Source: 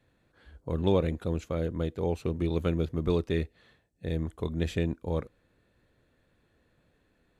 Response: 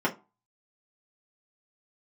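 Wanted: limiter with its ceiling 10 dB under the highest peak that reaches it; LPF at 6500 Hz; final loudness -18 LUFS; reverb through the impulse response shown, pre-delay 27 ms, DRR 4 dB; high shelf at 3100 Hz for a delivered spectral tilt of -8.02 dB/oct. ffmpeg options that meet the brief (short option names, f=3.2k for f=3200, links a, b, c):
-filter_complex "[0:a]lowpass=6.5k,highshelf=f=3.1k:g=-8.5,alimiter=level_in=0.5dB:limit=-24dB:level=0:latency=1,volume=-0.5dB,asplit=2[a][b];[1:a]atrim=start_sample=2205,adelay=27[c];[b][c]afir=irnorm=-1:irlink=0,volume=-15.5dB[d];[a][d]amix=inputs=2:normalize=0,volume=15dB"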